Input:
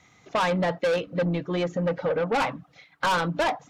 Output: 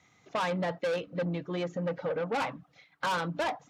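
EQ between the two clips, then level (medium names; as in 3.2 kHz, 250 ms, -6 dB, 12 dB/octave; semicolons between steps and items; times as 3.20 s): high-pass 64 Hz; -6.5 dB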